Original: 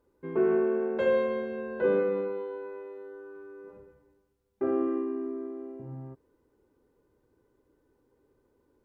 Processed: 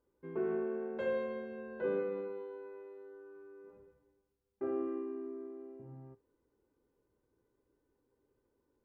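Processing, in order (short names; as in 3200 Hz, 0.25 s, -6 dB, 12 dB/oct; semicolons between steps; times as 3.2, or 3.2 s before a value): resonator 57 Hz, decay 0.18 s, harmonics all, mix 60%; gain -6 dB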